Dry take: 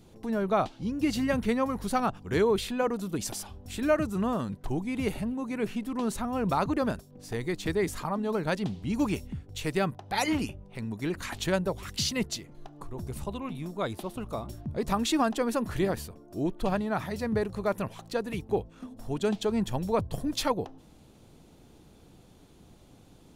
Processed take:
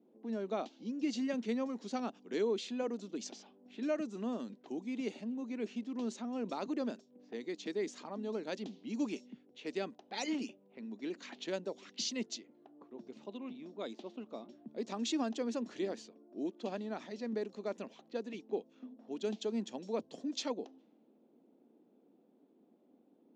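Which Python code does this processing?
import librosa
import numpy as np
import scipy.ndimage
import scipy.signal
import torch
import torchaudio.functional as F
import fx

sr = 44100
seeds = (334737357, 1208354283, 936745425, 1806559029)

y = fx.env_lowpass(x, sr, base_hz=940.0, full_db=-26.0)
y = scipy.signal.sosfilt(scipy.signal.cheby1(4, 1.0, [230.0, 6800.0], 'bandpass', fs=sr, output='sos'), y)
y = fx.peak_eq(y, sr, hz=1200.0, db=-10.5, octaves=1.9)
y = F.gain(torch.from_numpy(y), -5.0).numpy()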